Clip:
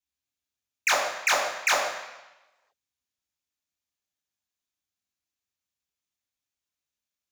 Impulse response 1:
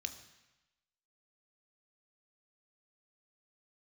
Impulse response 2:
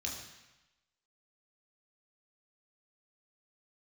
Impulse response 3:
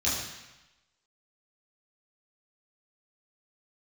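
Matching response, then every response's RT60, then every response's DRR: 2; 1.0, 1.0, 1.0 seconds; 7.5, −2.0, −8.5 decibels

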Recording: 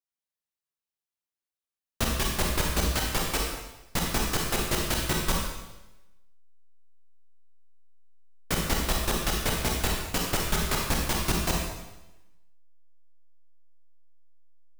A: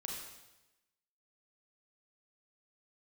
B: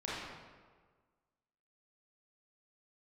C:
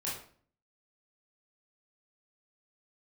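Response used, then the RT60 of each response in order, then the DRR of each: A; 1.0, 1.5, 0.50 seconds; −1.0, −8.5, −7.5 decibels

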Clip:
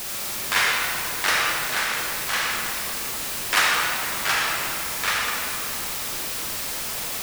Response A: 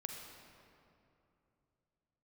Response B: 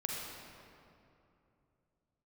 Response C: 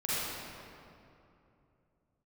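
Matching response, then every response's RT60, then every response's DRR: B; 2.8, 2.8, 2.8 seconds; 2.0, −2.5, −11.0 decibels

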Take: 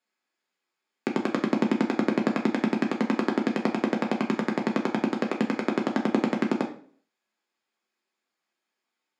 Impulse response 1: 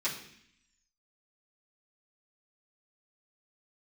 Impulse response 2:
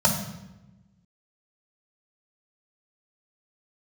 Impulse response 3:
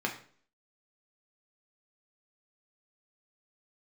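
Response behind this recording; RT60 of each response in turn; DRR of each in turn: 3; 0.65, 0.95, 0.50 seconds; −11.0, −2.0, 0.0 decibels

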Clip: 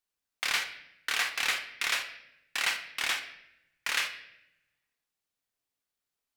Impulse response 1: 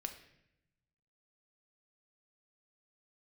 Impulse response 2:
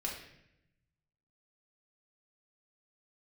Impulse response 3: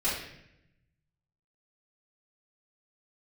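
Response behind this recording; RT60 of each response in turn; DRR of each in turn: 1; 0.80, 0.80, 0.80 seconds; 5.0, −3.0, −11.5 decibels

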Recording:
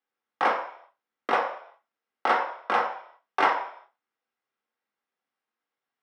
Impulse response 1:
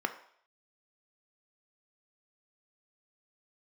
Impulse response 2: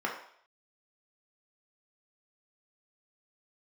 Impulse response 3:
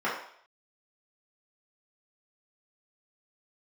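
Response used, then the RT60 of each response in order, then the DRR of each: 2; 0.60, 0.60, 0.60 seconds; 6.5, −2.5, −9.5 decibels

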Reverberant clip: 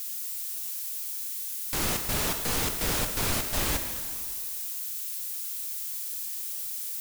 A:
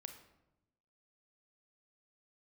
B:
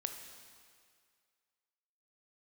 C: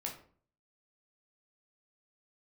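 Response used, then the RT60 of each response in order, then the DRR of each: B; 0.95, 2.1, 0.50 seconds; 6.5, 5.0, −1.0 decibels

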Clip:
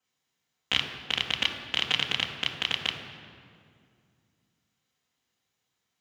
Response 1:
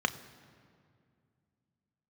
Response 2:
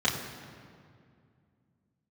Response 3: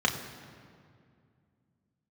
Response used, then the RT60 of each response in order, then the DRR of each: 2; 2.3, 2.3, 2.3 seconds; 9.0, −6.5, 0.5 decibels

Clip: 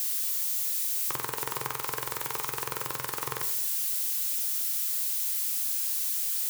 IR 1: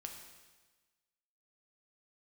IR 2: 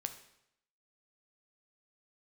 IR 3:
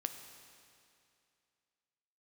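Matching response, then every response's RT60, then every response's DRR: 2; 1.3, 0.75, 2.5 seconds; 2.5, 7.5, 6.5 decibels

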